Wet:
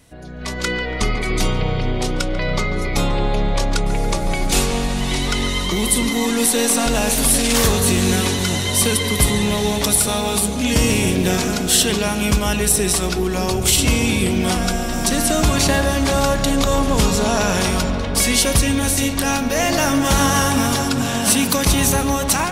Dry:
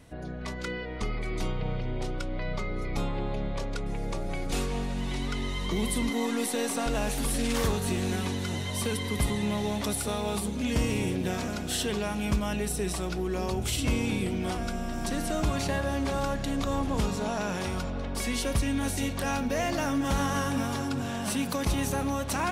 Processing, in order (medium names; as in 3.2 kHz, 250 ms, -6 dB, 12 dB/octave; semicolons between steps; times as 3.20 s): treble shelf 3.2 kHz +9.5 dB; level rider gain up to 11.5 dB; on a send: filtered feedback delay 142 ms, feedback 81%, low-pass 2 kHz, level -10.5 dB